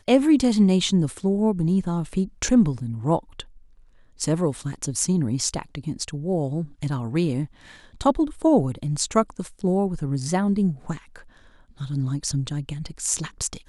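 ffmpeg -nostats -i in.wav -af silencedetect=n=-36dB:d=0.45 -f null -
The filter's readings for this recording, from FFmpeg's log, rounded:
silence_start: 3.42
silence_end: 4.20 | silence_duration: 0.79
silence_start: 11.20
silence_end: 11.80 | silence_duration: 0.61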